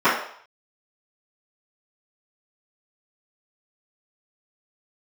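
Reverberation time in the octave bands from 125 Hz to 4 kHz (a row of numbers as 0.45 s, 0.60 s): 0.30 s, 0.40 s, 0.55 s, 0.65 s, 0.55 s, 0.60 s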